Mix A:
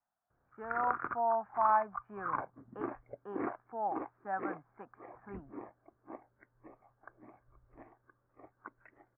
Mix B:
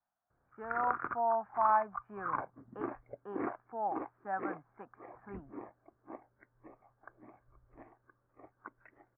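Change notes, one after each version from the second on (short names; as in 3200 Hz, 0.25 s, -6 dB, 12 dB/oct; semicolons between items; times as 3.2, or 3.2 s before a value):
none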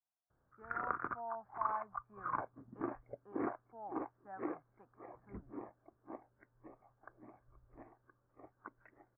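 speech -11.5 dB; master: add air absorption 450 m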